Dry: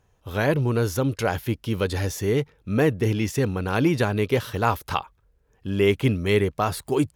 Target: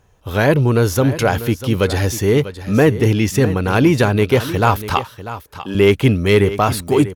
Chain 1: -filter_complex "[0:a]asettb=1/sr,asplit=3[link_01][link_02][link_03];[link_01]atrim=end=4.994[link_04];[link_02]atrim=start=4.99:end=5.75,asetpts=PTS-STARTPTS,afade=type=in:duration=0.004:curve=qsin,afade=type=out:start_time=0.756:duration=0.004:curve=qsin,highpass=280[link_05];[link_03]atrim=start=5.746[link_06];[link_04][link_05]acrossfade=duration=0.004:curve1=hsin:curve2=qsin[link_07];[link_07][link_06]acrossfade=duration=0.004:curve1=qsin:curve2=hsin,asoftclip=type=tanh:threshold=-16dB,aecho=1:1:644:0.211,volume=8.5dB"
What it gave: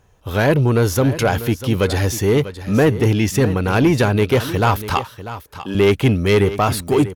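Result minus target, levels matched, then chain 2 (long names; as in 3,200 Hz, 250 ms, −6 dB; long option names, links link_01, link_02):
soft clipping: distortion +8 dB
-filter_complex "[0:a]asettb=1/sr,asplit=3[link_01][link_02][link_03];[link_01]atrim=end=4.994[link_04];[link_02]atrim=start=4.99:end=5.75,asetpts=PTS-STARTPTS,afade=type=in:duration=0.004:curve=qsin,afade=type=out:start_time=0.756:duration=0.004:curve=qsin,highpass=280[link_05];[link_03]atrim=start=5.746[link_06];[link_04][link_05]acrossfade=duration=0.004:curve1=hsin:curve2=qsin[link_07];[link_07][link_06]acrossfade=duration=0.004:curve1=qsin:curve2=hsin,asoftclip=type=tanh:threshold=-10dB,aecho=1:1:644:0.211,volume=8.5dB"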